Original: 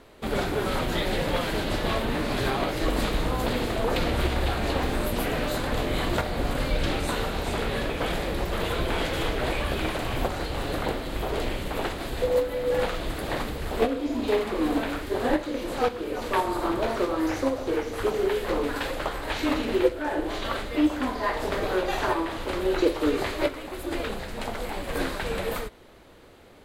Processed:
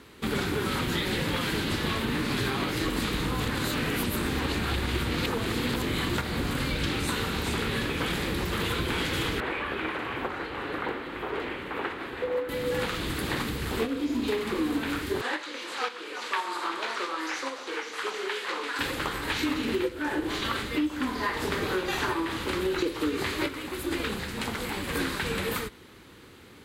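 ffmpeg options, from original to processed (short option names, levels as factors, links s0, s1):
-filter_complex "[0:a]asettb=1/sr,asplit=3[s0][s1][s2];[s0]atrim=end=9.404[s3];[s1]atrim=start=9.4:end=12.49,asetpts=PTS-STARTPTS,afade=t=in:d=0.004:c=qsin,afade=t=out:st=3.086:d=0.004:c=qsin,acrossover=split=320 2600:gain=0.178 1 0.0891[s4][s5][s6];[s4][s5][s6]amix=inputs=3:normalize=0[s7];[s2]atrim=start=12.486[s8];[s3][s7]acrossfade=d=0.004:c1=hsin:c2=qsin[s9];[s9][s8]acrossfade=d=0.004:c1=qsin:c2=hsin,asettb=1/sr,asplit=3[s10][s11][s12];[s10]atrim=end=15.214[s13];[s11]atrim=start=15.21:end=18.79,asetpts=PTS-STARTPTS,afade=t=in:d=0.004:c=qsin,afade=t=out:st=3.576:d=0.004:c=qsin,highpass=720,lowpass=7300[s14];[s12]atrim=start=18.786[s15];[s13][s14]acrossfade=d=0.004:c1=hsin:c2=qsin[s16];[s16][s15]acrossfade=d=0.004:c1=qsin:c2=hsin,asplit=3[s17][s18][s19];[s17]atrim=end=3.402[s20];[s18]atrim=start=3.398:end=5.822,asetpts=PTS-STARTPTS,areverse[s21];[s19]atrim=start=5.818[s22];[s20][s21]acrossfade=d=0.004:c1=hsin:c2=hsin[s23];[s23][s22]acrossfade=d=0.004:c1=hsin:c2=hsin,highpass=76,equalizer=f=640:w=1.9:g=-14.5,acompressor=threshold=0.0355:ratio=6,volume=1.68"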